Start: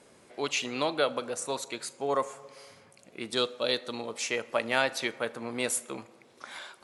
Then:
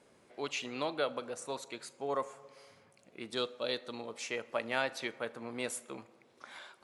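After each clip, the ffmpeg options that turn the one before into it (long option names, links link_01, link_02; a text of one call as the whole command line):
ffmpeg -i in.wav -af "highshelf=frequency=5300:gain=-6,volume=-6dB" out.wav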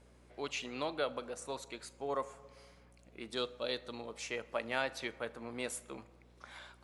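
ffmpeg -i in.wav -af "aeval=exprs='val(0)+0.001*(sin(2*PI*60*n/s)+sin(2*PI*2*60*n/s)/2+sin(2*PI*3*60*n/s)/3+sin(2*PI*4*60*n/s)/4+sin(2*PI*5*60*n/s)/5)':channel_layout=same,volume=-2dB" out.wav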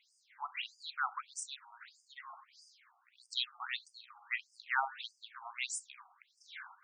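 ffmpeg -i in.wav -af "afftfilt=real='re*between(b*sr/1024,970*pow(6800/970,0.5+0.5*sin(2*PI*1.6*pts/sr))/1.41,970*pow(6800/970,0.5+0.5*sin(2*PI*1.6*pts/sr))*1.41)':imag='im*between(b*sr/1024,970*pow(6800/970,0.5+0.5*sin(2*PI*1.6*pts/sr))/1.41,970*pow(6800/970,0.5+0.5*sin(2*PI*1.6*pts/sr))*1.41)':win_size=1024:overlap=0.75,volume=7dB" out.wav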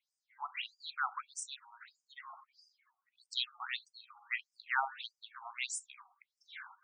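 ffmpeg -i in.wav -af "afftdn=noise_reduction=18:noise_floor=-56" out.wav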